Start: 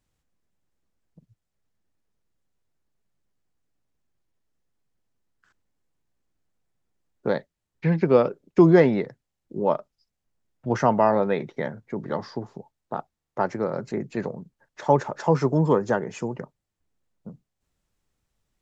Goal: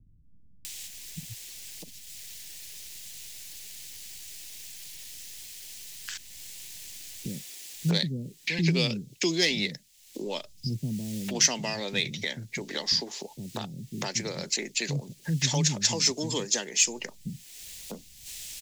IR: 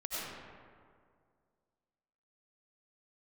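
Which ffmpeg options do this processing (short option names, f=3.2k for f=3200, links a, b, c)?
-filter_complex "[0:a]aexciter=amount=6.6:drive=9.2:freq=2k,acompressor=mode=upward:threshold=-21dB:ratio=2.5,acrossover=split=240[a][b];[b]adelay=650[c];[a][c]amix=inputs=2:normalize=0,acrossover=split=250|3000[d][e][f];[e]acompressor=threshold=-35dB:ratio=4[g];[d][g][f]amix=inputs=3:normalize=0,volume=-1.5dB"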